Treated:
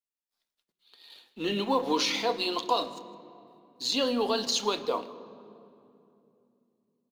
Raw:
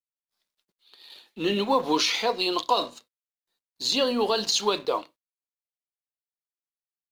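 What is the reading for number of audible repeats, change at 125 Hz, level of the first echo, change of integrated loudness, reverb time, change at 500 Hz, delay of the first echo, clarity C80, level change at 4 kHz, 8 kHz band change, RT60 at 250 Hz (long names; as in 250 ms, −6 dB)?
1, −3.5 dB, −22.0 dB, −3.5 dB, 2.8 s, −3.5 dB, 159 ms, 14.5 dB, −4.0 dB, −4.0 dB, 4.1 s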